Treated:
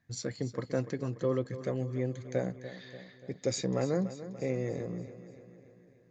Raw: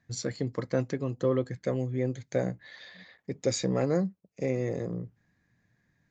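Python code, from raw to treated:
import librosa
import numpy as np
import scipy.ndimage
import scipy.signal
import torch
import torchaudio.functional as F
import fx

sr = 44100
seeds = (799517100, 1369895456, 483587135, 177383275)

y = fx.echo_feedback(x, sr, ms=291, feedback_pct=57, wet_db=-13.5)
y = y * 10.0 ** (-3.5 / 20.0)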